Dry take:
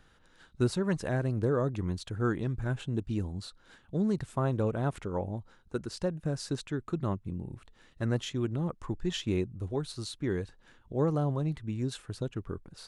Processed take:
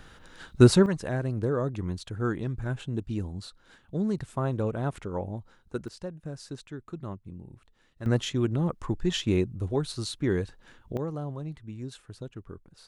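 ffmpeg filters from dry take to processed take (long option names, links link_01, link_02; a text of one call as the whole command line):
ffmpeg -i in.wav -af "asetnsamples=nb_out_samples=441:pad=0,asendcmd='0.86 volume volume 0.5dB;5.88 volume volume -6dB;8.06 volume volume 5dB;10.97 volume volume -5.5dB',volume=11.5dB" out.wav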